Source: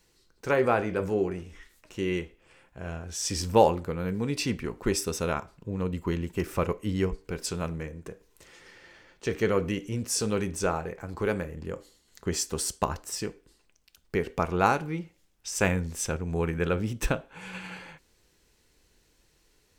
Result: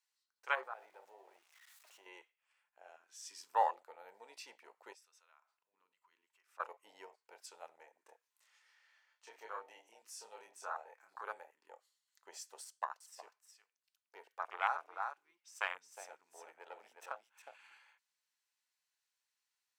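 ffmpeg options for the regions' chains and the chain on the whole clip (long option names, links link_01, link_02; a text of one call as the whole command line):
ffmpeg -i in.wav -filter_complex "[0:a]asettb=1/sr,asplit=3[link_01][link_02][link_03];[link_01]atrim=end=0.634[link_04];[link_02]atrim=start=0.63:end=2.06,asetpts=PTS-STARTPTS,afade=type=in:duration=0.004:curve=qsin,afade=type=out:start_time=1.426:duration=0.004:curve=qsin,aeval=exprs='val(0)+0.5*0.0141*sgn(val(0))':channel_layout=same,acompressor=threshold=-40dB:ratio=2:attack=3.2:release=140:knee=1:detection=peak[link_05];[link_03]atrim=start=2.056[link_06];[link_04][link_05]acrossfade=duration=0.004:curve1=hsin:curve2=qsin[link_07];[link_07][link_06]acrossfade=duration=0.004:curve1=qsin:curve2=hsin,asettb=1/sr,asplit=3[link_08][link_09][link_10];[link_08]atrim=end=4.934[link_11];[link_09]atrim=start=4.93:end=6.6,asetpts=PTS-STARTPTS,afade=type=in:duration=0.004:curve=qsin,afade=type=out:start_time=1.666:duration=0.004:curve=qsin,highshelf=frequency=11000:gain=-11.5,acompressor=threshold=-47dB:ratio=2.5:attack=3.2:release=140:knee=1:detection=peak[link_12];[link_10]atrim=start=6.596[link_13];[link_11][link_12]acrossfade=duration=0.004:curve1=hsin:curve2=qsin[link_14];[link_14][link_13]acrossfade=duration=0.004:curve1=qsin:curve2=hsin,asettb=1/sr,asplit=3[link_15][link_16][link_17];[link_15]atrim=end=7.974[link_18];[link_16]atrim=start=7.97:end=11.21,asetpts=PTS-STARTPTS,afade=type=in:duration=0.004:curve=qsin,afade=type=out:start_time=3.236:duration=0.004:curve=qsin,acompressor=threshold=-36dB:ratio=1.5:attack=3.2:release=140:knee=1:detection=peak,asplit=2[link_19][link_20];[link_20]adelay=27,volume=-2dB[link_21];[link_19][link_21]amix=inputs=2:normalize=0,atrim=end_sample=142884[link_22];[link_17]atrim=start=11.206[link_23];[link_18][link_22]acrossfade=duration=0.004:curve1=hsin:curve2=qsin[link_24];[link_24][link_23]acrossfade=duration=0.004:curve1=qsin:curve2=hsin,asettb=1/sr,asplit=3[link_25][link_26][link_27];[link_25]atrim=end=12.644[link_28];[link_26]atrim=start=12.64:end=17.59,asetpts=PTS-STARTPTS,afade=type=in:duration=0.004:curve=qsin,afade=type=out:start_time=4.946:duration=0.004:curve=qsin,aeval=exprs='(tanh(4.47*val(0)+0.7)-tanh(0.7))/4.47':channel_layout=same,aecho=1:1:362:0.531,atrim=end_sample=218295[link_29];[link_27]atrim=start=17.586[link_30];[link_28][link_29]acrossfade=duration=0.004:curve1=hsin:curve2=qsin[link_31];[link_31][link_30]acrossfade=duration=0.004:curve1=qsin:curve2=hsin,afwtdn=0.0282,highpass=frequency=860:width=0.5412,highpass=frequency=860:width=1.3066,volume=-3dB" out.wav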